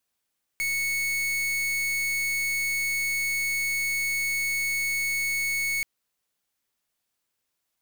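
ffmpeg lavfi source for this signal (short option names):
-f lavfi -i "aevalsrc='0.0447*(2*lt(mod(2210*t,1),0.43)-1)':d=5.23:s=44100"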